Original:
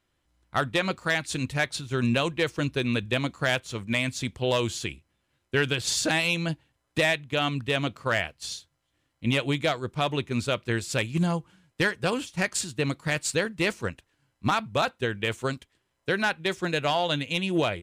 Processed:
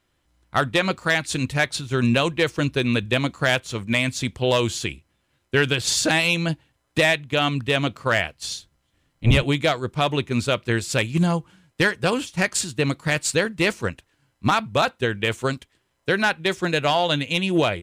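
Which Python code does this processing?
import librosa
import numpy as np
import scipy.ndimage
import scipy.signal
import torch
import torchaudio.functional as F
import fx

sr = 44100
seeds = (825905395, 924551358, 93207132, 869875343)

y = fx.octave_divider(x, sr, octaves=1, level_db=3.0, at=(8.55, 9.44))
y = y * 10.0 ** (5.0 / 20.0)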